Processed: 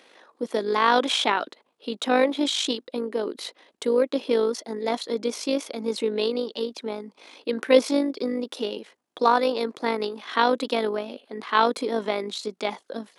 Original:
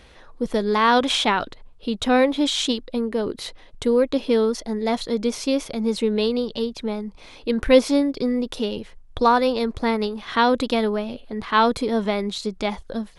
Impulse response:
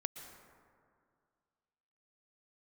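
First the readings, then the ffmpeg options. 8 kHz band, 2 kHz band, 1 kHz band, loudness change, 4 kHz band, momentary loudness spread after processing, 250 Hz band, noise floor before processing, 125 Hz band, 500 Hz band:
-2.5 dB, -2.5 dB, -2.5 dB, -3.0 dB, -2.5 dB, 14 LU, -6.5 dB, -47 dBFS, under -10 dB, -2.5 dB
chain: -af "tremolo=f=51:d=0.519,highpass=f=260:w=0.5412,highpass=f=260:w=1.3066"

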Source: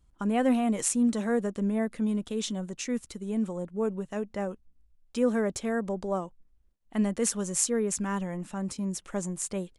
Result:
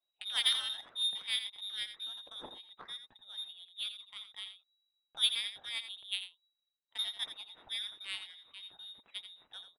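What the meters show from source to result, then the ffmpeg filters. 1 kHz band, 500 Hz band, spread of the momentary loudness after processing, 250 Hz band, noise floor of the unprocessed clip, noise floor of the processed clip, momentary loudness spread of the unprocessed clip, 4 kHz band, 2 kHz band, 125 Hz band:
-18.0 dB, -33.0 dB, 18 LU, under -40 dB, -64 dBFS, under -85 dBFS, 9 LU, +12.0 dB, -3.5 dB, under -35 dB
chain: -filter_complex "[0:a]lowpass=f=3300:t=q:w=0.5098,lowpass=f=3300:t=q:w=0.6013,lowpass=f=3300:t=q:w=0.9,lowpass=f=3300:t=q:w=2.563,afreqshift=-3900,lowshelf=f=280:g=-6.5,adynamicsmooth=sensitivity=1:basefreq=640,highshelf=f=2400:g=10,asplit=2[s0][s1];[s1]aecho=0:1:85:0.316[s2];[s0][s2]amix=inputs=2:normalize=0"

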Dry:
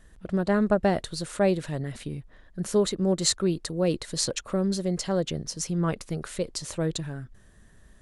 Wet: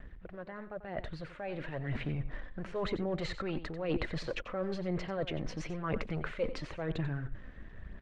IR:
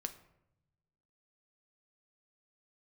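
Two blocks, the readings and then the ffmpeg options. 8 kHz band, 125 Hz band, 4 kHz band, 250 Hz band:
-27.5 dB, -7.5 dB, -14.0 dB, -11.0 dB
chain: -filter_complex "[0:a]equalizer=f=2300:t=o:w=1.6:g=14.5,acrossover=split=530[s0][s1];[s0]aeval=exprs='(tanh(89.1*val(0)+0.4)-tanh(0.4))/89.1':c=same[s2];[s1]alimiter=limit=0.168:level=0:latency=1:release=49[s3];[s2][s3]amix=inputs=2:normalize=0,tiltshelf=f=1100:g=9.5,aeval=exprs='sgn(val(0))*max(abs(val(0))-0.00188,0)':c=same,areverse,acompressor=threshold=0.0126:ratio=6,areverse,aphaser=in_gain=1:out_gain=1:delay=4:decay=0.38:speed=1:type=sinusoidal,aecho=1:1:91:0.224,dynaudnorm=f=700:g=5:m=2.51,lowpass=3100,volume=0.708"

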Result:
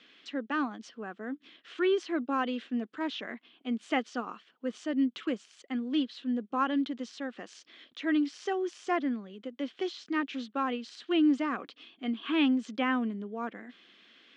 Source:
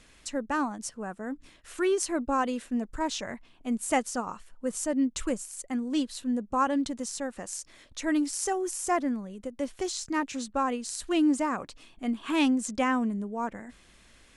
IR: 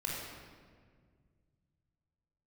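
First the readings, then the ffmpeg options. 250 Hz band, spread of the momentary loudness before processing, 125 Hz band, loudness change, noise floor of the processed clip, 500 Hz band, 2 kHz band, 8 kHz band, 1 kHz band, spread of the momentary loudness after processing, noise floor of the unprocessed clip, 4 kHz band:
-1.5 dB, 11 LU, no reading, -2.0 dB, -66 dBFS, -2.5 dB, -0.5 dB, under -20 dB, -4.5 dB, 14 LU, -58 dBFS, -0.5 dB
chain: -filter_complex "[0:a]highpass=f=230:w=0.5412,highpass=f=230:w=1.3066,equalizer=f=580:t=q:w=4:g=-7,equalizer=f=910:t=q:w=4:g=-9,equalizer=f=3200:t=q:w=4:g=8,lowpass=f=4300:w=0.5412,lowpass=f=4300:w=1.3066,acrossover=split=2800[s0][s1];[s1]acompressor=threshold=0.00562:ratio=4:attack=1:release=60[s2];[s0][s2]amix=inputs=2:normalize=0"

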